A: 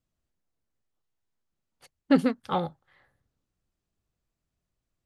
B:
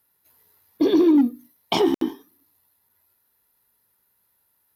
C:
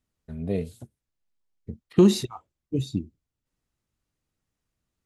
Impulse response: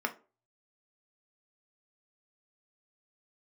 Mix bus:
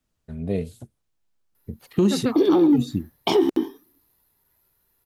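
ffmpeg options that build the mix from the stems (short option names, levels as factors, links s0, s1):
-filter_complex "[0:a]bandreject=f=2000:w=12,volume=1.41[s0];[1:a]equalizer=f=380:t=o:w=0.63:g=5.5,adelay=1550,volume=0.891[s1];[2:a]volume=1.26,asplit=2[s2][s3];[s3]apad=whole_len=223037[s4];[s0][s4]sidechaincompress=threshold=0.0891:ratio=8:attack=16:release=244[s5];[s5][s1][s2]amix=inputs=3:normalize=0,alimiter=limit=0.316:level=0:latency=1:release=152"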